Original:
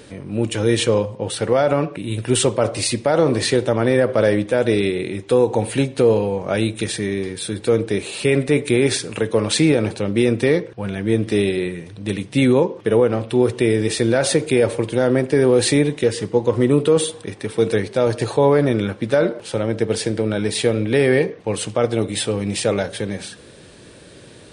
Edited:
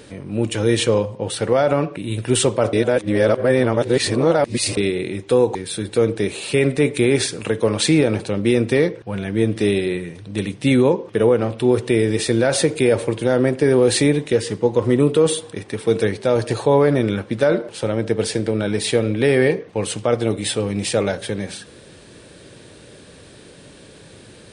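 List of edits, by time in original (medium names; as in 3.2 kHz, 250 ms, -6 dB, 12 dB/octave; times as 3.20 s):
2.73–4.77 s: reverse
5.55–7.26 s: delete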